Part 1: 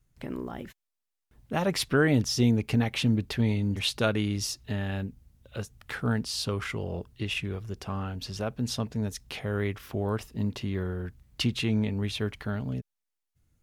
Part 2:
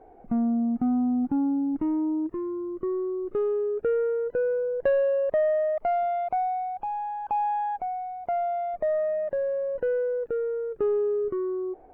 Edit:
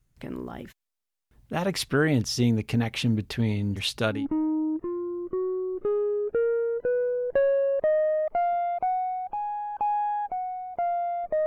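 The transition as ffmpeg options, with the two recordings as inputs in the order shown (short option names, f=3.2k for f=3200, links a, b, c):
-filter_complex "[0:a]apad=whole_dur=11.46,atrim=end=11.46,atrim=end=4.26,asetpts=PTS-STARTPTS[a];[1:a]atrim=start=1.58:end=8.96,asetpts=PTS-STARTPTS[b];[a][b]acrossfade=d=0.18:c1=tri:c2=tri"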